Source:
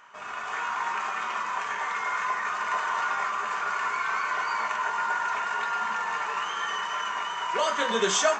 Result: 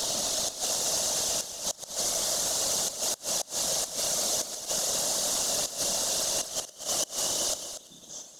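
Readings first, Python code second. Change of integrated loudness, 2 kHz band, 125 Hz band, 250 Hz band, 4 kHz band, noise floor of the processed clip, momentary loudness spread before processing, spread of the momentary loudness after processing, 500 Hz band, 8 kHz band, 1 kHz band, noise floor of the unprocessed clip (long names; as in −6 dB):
+1.0 dB, −16.5 dB, can't be measured, −1.5 dB, +5.5 dB, −51 dBFS, 4 LU, 6 LU, −3.0 dB, +12.5 dB, −14.5 dB, −35 dBFS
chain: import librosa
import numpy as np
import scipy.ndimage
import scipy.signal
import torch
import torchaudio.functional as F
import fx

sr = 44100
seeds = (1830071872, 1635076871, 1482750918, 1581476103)

p1 = fx.delta_mod(x, sr, bps=64000, step_db=-26.5)
p2 = scipy.signal.sosfilt(scipy.signal.cheby1(3, 1.0, [220.0, 3400.0], 'bandstop', fs=sr, output='sos'), p1)
p3 = fx.sample_hold(p2, sr, seeds[0], rate_hz=3300.0, jitter_pct=0)
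p4 = p2 + (p3 * 10.0 ** (-8.5 / 20.0))
p5 = fx.low_shelf(p4, sr, hz=180.0, db=-9.5)
p6 = fx.small_body(p5, sr, hz=(580.0, 2800.0), ring_ms=45, db=9)
p7 = fx.whisperise(p6, sr, seeds[1])
p8 = fx.graphic_eq_15(p7, sr, hz=(100, 630, 2500, 6300), db=(-5, 9, -8, 9))
p9 = fx.gate_flip(p8, sr, shuts_db=-23.0, range_db=-26)
p10 = p9 + fx.echo_single(p9, sr, ms=237, db=-10.0, dry=0)
y = p10 * 10.0 ** (6.5 / 20.0)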